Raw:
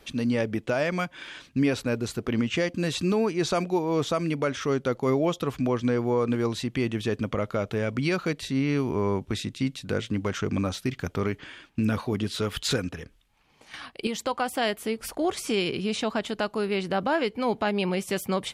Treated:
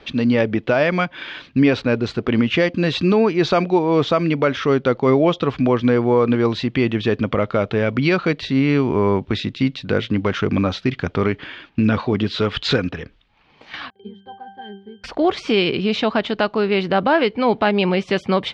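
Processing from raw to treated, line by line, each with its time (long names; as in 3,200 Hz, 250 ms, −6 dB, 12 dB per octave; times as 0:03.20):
0:13.90–0:15.04: resonances in every octave G, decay 0.39 s
whole clip: low-pass filter 4,300 Hz 24 dB per octave; low-shelf EQ 80 Hz −5.5 dB; level +9 dB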